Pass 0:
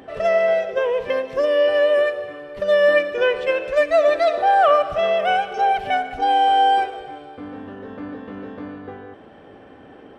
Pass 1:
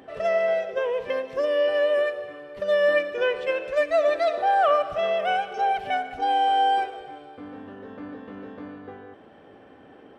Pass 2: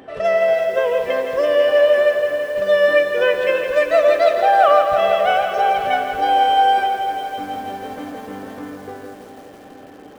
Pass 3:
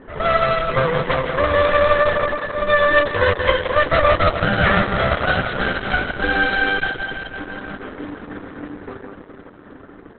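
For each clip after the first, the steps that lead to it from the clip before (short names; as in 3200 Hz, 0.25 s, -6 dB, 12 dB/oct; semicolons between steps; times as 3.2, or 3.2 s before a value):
low shelf 74 Hz -7 dB; gain -5 dB
dark delay 0.429 s, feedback 80%, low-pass 420 Hz, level -13 dB; lo-fi delay 0.165 s, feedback 80%, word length 8-bit, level -9 dB; gain +6 dB
minimum comb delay 0.56 ms; low-pass opened by the level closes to 1700 Hz, open at -16 dBFS; gain +4 dB; Opus 8 kbps 48000 Hz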